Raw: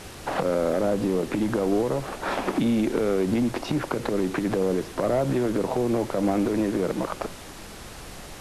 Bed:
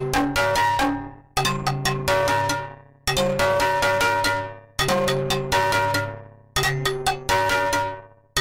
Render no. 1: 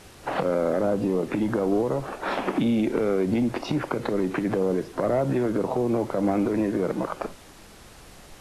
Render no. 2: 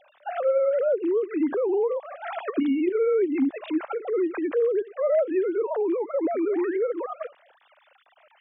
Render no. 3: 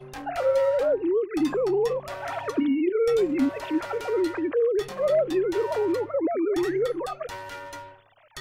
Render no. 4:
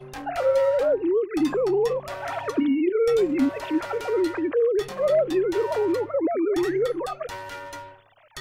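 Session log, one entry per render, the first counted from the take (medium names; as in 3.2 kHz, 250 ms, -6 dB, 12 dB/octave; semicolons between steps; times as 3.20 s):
noise print and reduce 7 dB
formants replaced by sine waves; 6.34–6.77 s: painted sound rise 230–2300 Hz -42 dBFS
add bed -17.5 dB
trim +1.5 dB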